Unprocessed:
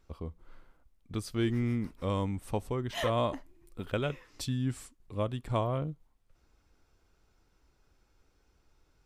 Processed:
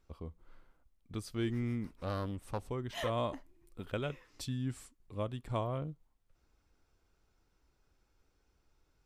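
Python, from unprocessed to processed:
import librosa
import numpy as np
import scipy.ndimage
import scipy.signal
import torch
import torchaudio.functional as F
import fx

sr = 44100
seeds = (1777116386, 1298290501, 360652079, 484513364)

y = fx.doppler_dist(x, sr, depth_ms=0.62, at=(1.93, 2.69))
y = y * 10.0 ** (-5.0 / 20.0)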